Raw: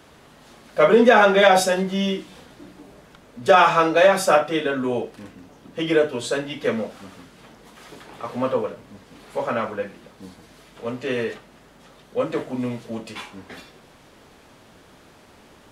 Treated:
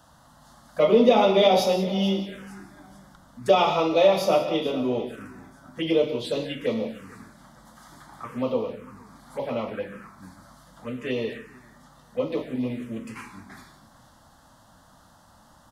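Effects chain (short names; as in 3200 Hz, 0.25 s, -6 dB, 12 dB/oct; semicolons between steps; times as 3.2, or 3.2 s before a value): feedback echo 0.446 s, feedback 40%, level -18 dB; non-linear reverb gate 0.21 s flat, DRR 7.5 dB; envelope phaser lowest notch 380 Hz, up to 1600 Hz, full sweep at -20 dBFS; gain -2 dB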